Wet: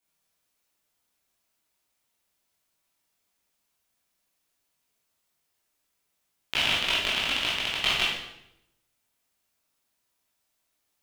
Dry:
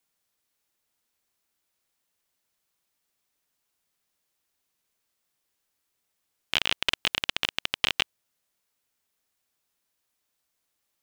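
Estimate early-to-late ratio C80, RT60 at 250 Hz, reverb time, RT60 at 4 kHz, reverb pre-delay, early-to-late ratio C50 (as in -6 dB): 5.0 dB, 0.95 s, 0.80 s, 0.70 s, 14 ms, 1.5 dB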